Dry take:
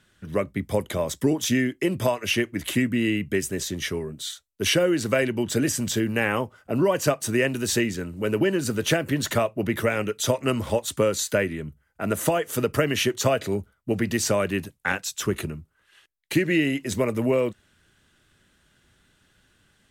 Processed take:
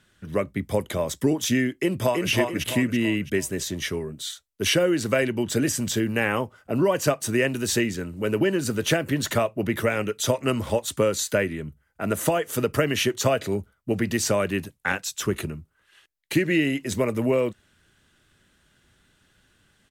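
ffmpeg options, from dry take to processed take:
-filter_complex "[0:a]asplit=2[s0][s1];[s1]afade=t=in:st=1.76:d=0.01,afade=t=out:st=2.3:d=0.01,aecho=0:1:330|660|990|1320|1650:0.707946|0.283178|0.113271|0.0453085|0.0181234[s2];[s0][s2]amix=inputs=2:normalize=0"

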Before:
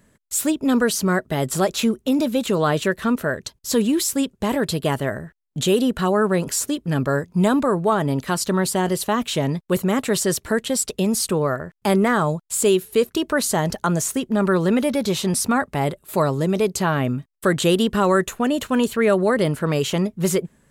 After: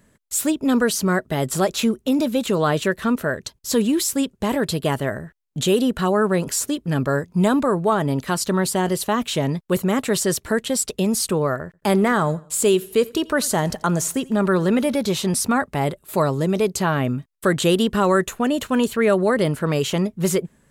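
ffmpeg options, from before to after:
-filter_complex "[0:a]asettb=1/sr,asplit=3[s0][s1][s2];[s0]atrim=end=11.654[s3];[s1]atrim=start=11.65:end=14.96,asetpts=PTS-STARTPTS,afade=t=in:d=0.004:c=qsin,afade=t=out:st=3.306:d=0.004:c=qsin,aecho=1:1:86|172|258:0.0708|0.0283|0.0113,atrim=end_sample=145971[s4];[s2]atrim=start=14.956[s5];[s3][s4]acrossfade=d=0.004:c1=hsin:c2=qsin[s6];[s6][s5]acrossfade=d=0.004:c1=qsin:c2=hsin"

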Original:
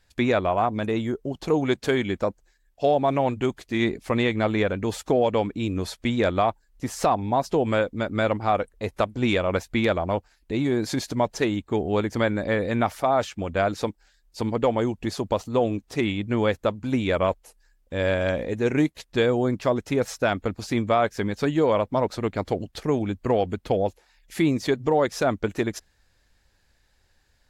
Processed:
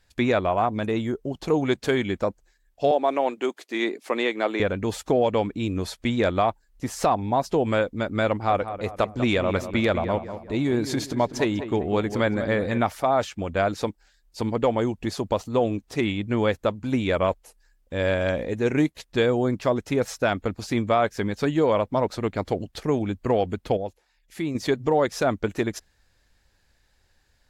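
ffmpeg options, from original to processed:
-filter_complex "[0:a]asettb=1/sr,asplit=3[s0][s1][s2];[s0]atrim=end=2.914[s3];[s1]atrim=start=2.91:end=4.6,asetpts=PTS-STARTPTS,afade=t=in:d=0.004:c=qsin,afade=t=out:st=1.686:d=0.004:c=qsin,highpass=f=290:w=0.5412,highpass=f=290:w=1.3066[s4];[s2]atrim=start=4.596[s5];[s3][s4]acrossfade=d=0.004:c1=hsin:c2=qsin[s6];[s6][s5]acrossfade=d=0.004:c1=qsin:c2=hsin,asettb=1/sr,asplit=3[s7][s8][s9];[s7]atrim=end=8.304[s10];[s8]atrim=start=8.3:end=12.78,asetpts=PTS-STARTPTS,afade=t=in:d=0.004:c=qsin,afade=t=out:st=4.476:d=0.004:c=qsin,asplit=2[s11][s12];[s12]adelay=196,lowpass=f=2200:p=1,volume=0.299,asplit=2[s13][s14];[s14]adelay=196,lowpass=f=2200:p=1,volume=0.45,asplit=2[s15][s16];[s16]adelay=196,lowpass=f=2200:p=1,volume=0.45,asplit=2[s17][s18];[s18]adelay=196,lowpass=f=2200:p=1,volume=0.45,asplit=2[s19][s20];[s20]adelay=196,lowpass=f=2200:p=1,volume=0.45[s21];[s11][s13][s15][s17][s19][s21]amix=inputs=6:normalize=0,atrim=end_sample=197568[s22];[s9]atrim=start=12.776[s23];[s10][s22]acrossfade=d=0.004:c1=hsin:c2=qsin[s24];[s24][s23]acrossfade=d=0.004:c1=qsin:c2=hsin,asplit=3[s25][s26][s27];[s25]atrim=end=23.772[s28];[s26]atrim=start=23.768:end=24.552,asetpts=PTS-STARTPTS,volume=0.447[s29];[s27]atrim=start=24.548[s30];[s28][s29]acrossfade=d=0.004:c1=hsin:c2=hsin[s31];[s31][s30]acrossfade=d=0.004:c1=hsin:c2=hsin"

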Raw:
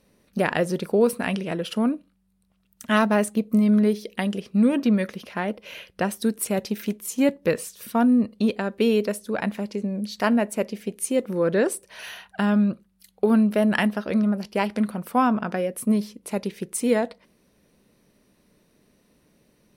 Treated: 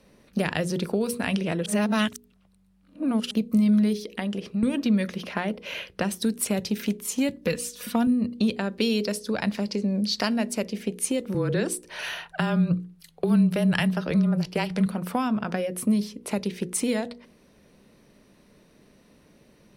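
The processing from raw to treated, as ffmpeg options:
-filter_complex "[0:a]asettb=1/sr,asplit=3[s0][s1][s2];[s0]atrim=end=3.984[s3];[s1]atrim=start=3.98:end=4.63,asetpts=PTS-STARTPTS,afade=t=in:d=0.004:c=qsin,afade=t=out:st=0.646:d=0.004:c=qsin,acompressor=threshold=0.02:ratio=2.5:attack=3.2:release=140:knee=1:detection=peak[s4];[s2]atrim=start=4.626[s5];[s3][s4]acrossfade=d=0.004:c1=hsin:c2=qsin[s6];[s6][s5]acrossfade=d=0.004:c1=qsin:c2=hsin,asettb=1/sr,asplit=3[s7][s8][s9];[s7]atrim=end=7.344[s10];[s8]atrim=start=7.34:end=8.07,asetpts=PTS-STARTPTS,afade=t=in:d=0.004:c=qsin,afade=t=out:st=0.726:d=0.004:c=qsin,aecho=1:1:4.1:0.65,atrim=end_sample=32193[s11];[s9]atrim=start=8.066[s12];[s10][s11]acrossfade=d=0.004:c1=hsin:c2=qsin[s13];[s13][s12]acrossfade=d=0.004:c1=qsin:c2=hsin,asettb=1/sr,asplit=3[s14][s15][s16];[s14]atrim=end=8.774[s17];[s15]atrim=start=8.77:end=10.62,asetpts=PTS-STARTPTS,afade=t=in:d=0.004:c=qsin,afade=t=out:st=1.846:d=0.004:c=qsin,equalizer=f=4900:w=2.3:g=8.5[s18];[s16]atrim=start=10.616[s19];[s17][s18]acrossfade=d=0.004:c1=hsin:c2=qsin[s20];[s20][s19]acrossfade=d=0.004:c1=qsin:c2=hsin,asettb=1/sr,asplit=3[s21][s22][s23];[s21]atrim=end=11.344[s24];[s22]atrim=start=11.34:end=14.86,asetpts=PTS-STARTPTS,afade=t=in:d=0.004:c=qsin,afade=t=out:st=3.516:d=0.004:c=qsin,afreqshift=-24[s25];[s23]atrim=start=14.856[s26];[s24][s25]acrossfade=d=0.004:c1=hsin:c2=qsin[s27];[s27][s26]acrossfade=d=0.004:c1=qsin:c2=hsin,asplit=3[s28][s29][s30];[s28]atrim=end=1.662[s31];[s29]atrim=start=1.658:end=3.312,asetpts=PTS-STARTPTS,areverse[s32];[s30]atrim=start=3.308[s33];[s31][s32]acrossfade=d=0.004:c1=hsin:c2=hsin[s34];[s34][s33]acrossfade=d=0.004:c1=hsin:c2=hsin,highshelf=f=8900:g=-10,bandreject=f=60:t=h:w=6,bandreject=f=120:t=h:w=6,bandreject=f=180:t=h:w=6,bandreject=f=240:t=h:w=6,bandreject=f=300:t=h:w=6,bandreject=f=360:t=h:w=6,bandreject=f=420:t=h:w=6,bandreject=f=480:t=h:w=6,acrossover=split=160|3000[s35][s36][s37];[s36]acompressor=threshold=0.0251:ratio=6[s38];[s35][s38][s37]amix=inputs=3:normalize=0,volume=2"

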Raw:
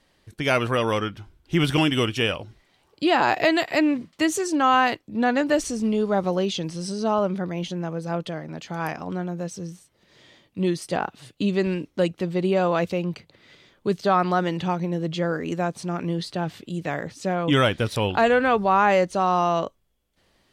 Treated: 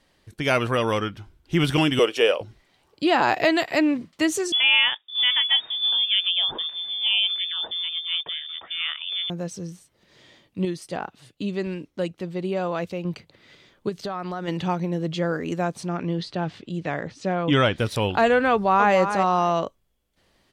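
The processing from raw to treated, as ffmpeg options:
-filter_complex "[0:a]asettb=1/sr,asplit=3[s0][s1][s2];[s0]atrim=end=1.994[s3];[s1]atrim=start=1.99:end=2.41,asetpts=PTS-STARTPTS,afade=t=in:d=0.004:c=qsin,afade=t=out:st=0.416:d=0.004:c=qsin,highpass=f=480:t=q:w=3[s4];[s2]atrim=start=2.406[s5];[s3][s4]acrossfade=d=0.004:c1=hsin:c2=qsin[s6];[s6][s5]acrossfade=d=0.004:c1=qsin:c2=hsin,asettb=1/sr,asplit=3[s7][s8][s9];[s7]atrim=end=4.524[s10];[s8]atrim=start=4.52:end=9.3,asetpts=PTS-STARTPTS,afade=t=in:d=0.004:c=qsin,afade=t=out:st=4.776:d=0.004:c=qsin,lowpass=f=3100:t=q:w=0.5098,lowpass=f=3100:t=q:w=0.6013,lowpass=f=3100:t=q:w=0.9,lowpass=f=3100:t=q:w=2.563,afreqshift=-3700[s11];[s9]atrim=start=9.296[s12];[s10][s11]acrossfade=d=0.004:c1=hsin:c2=qsin[s13];[s13][s12]acrossfade=d=0.004:c1=qsin:c2=hsin,asplit=3[s14][s15][s16];[s14]afade=t=out:st=13.88:d=0.02[s17];[s15]acompressor=threshold=0.0447:ratio=5:attack=3.2:release=140:knee=1:detection=peak,afade=t=in:st=13.88:d=0.02,afade=t=out:st=14.47:d=0.02[s18];[s16]afade=t=in:st=14.47:d=0.02[s19];[s17][s18][s19]amix=inputs=3:normalize=0,asettb=1/sr,asplit=3[s20][s21][s22];[s20]atrim=end=15.874[s23];[s21]atrim=start=15.87:end=17.76,asetpts=PTS-STARTPTS,afade=t=in:d=0.004:c=qsin,afade=t=out:st=1.886:d=0.004:c=qsin,lowpass=5300[s24];[s22]atrim=start=17.756[s25];[s23][s24]acrossfade=d=0.004:c1=hsin:c2=qsin[s26];[s26][s25]acrossfade=d=0.004:c1=qsin:c2=hsin,asplit=2[s27][s28];[s28]afade=t=in:st=18.51:d=0.01,afade=t=out:st=18.95:d=0.01,aecho=0:1:280|560:0.398107|0.0597161[s29];[s27][s29]amix=inputs=2:normalize=0,asplit=3[s30][s31][s32];[s30]atrim=end=10.652[s33];[s31]atrim=start=10.648:end=13.052,asetpts=PTS-STARTPTS,volume=0.562[s34];[s32]atrim=start=13.048[s35];[s33][s34]acrossfade=d=0.004:c1=hsin:c2=hsin[s36];[s36][s35]acrossfade=d=0.004:c1=hsin:c2=hsin"

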